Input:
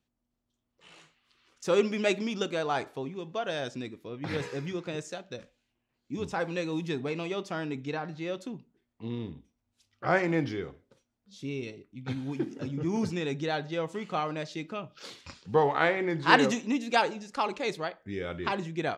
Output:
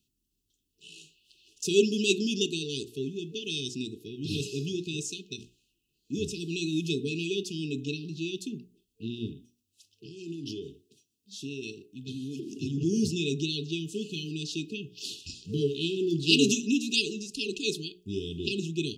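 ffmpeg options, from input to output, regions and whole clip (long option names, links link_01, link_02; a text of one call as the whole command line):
ffmpeg -i in.wav -filter_complex "[0:a]asettb=1/sr,asplit=3[link_01][link_02][link_03];[link_01]atrim=end=9.284[link_04];[link_02]atrim=start=9.28:end=12.53,asetpts=PTS-STARTPTS,afade=type=in:duration=0.004:curve=qsin,afade=type=out:start_time=3.246:duration=0.004:curve=qsin,lowshelf=frequency=100:gain=-11,acompressor=threshold=-35dB:ratio=16:attack=3.2:release=140:knee=1:detection=peak,highpass=56[link_05];[link_03]atrim=start=12.526[link_06];[link_04][link_05]acrossfade=duration=0.004:curve1=hsin:curve2=qsin[link_07];[link_07][link_06]acrossfade=duration=0.004:curve1=qsin:curve2=hsin,highshelf=frequency=3500:gain=8.5,afftfilt=real='re*(1-between(b*sr/4096,450,2500))':imag='im*(1-between(b*sr/4096,450,2500))':win_size=4096:overlap=0.75,bandreject=frequency=60:width_type=h:width=6,bandreject=frequency=120:width_type=h:width=6,bandreject=frequency=180:width_type=h:width=6,bandreject=frequency=240:width_type=h:width=6,bandreject=frequency=300:width_type=h:width=6,bandreject=frequency=360:width_type=h:width=6,bandreject=frequency=420:width_type=h:width=6,volume=3.5dB" out.wav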